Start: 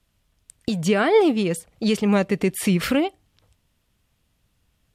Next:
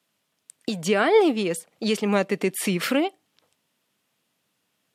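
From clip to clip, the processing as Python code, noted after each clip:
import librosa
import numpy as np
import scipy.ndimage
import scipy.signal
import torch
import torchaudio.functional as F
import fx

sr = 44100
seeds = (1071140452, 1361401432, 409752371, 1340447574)

y = scipy.signal.sosfilt(scipy.signal.bessel(4, 260.0, 'highpass', norm='mag', fs=sr, output='sos'), x)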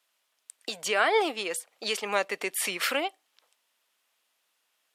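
y = scipy.signal.sosfilt(scipy.signal.butter(2, 690.0, 'highpass', fs=sr, output='sos'), x)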